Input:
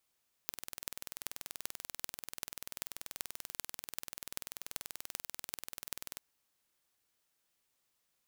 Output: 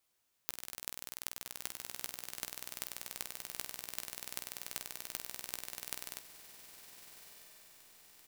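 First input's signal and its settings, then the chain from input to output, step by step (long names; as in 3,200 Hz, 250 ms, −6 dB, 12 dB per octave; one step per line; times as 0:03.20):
impulse train 20.6 per second, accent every 8, −8.5 dBFS 5.72 s
double-tracking delay 16 ms −7 dB
on a send: feedback delay with all-pass diffusion 1,304 ms, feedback 53%, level −11 dB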